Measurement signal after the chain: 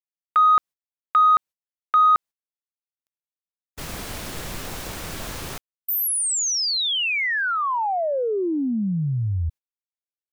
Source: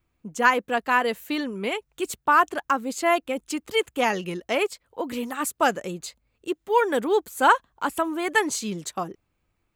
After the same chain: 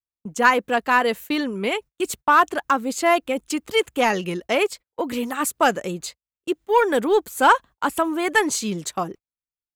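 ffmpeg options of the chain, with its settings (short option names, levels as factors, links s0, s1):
-filter_complex "[0:a]agate=range=0.0126:threshold=0.01:ratio=16:detection=peak,asplit=2[s0][s1];[s1]asoftclip=type=tanh:threshold=0.141,volume=0.631[s2];[s0][s2]amix=inputs=2:normalize=0"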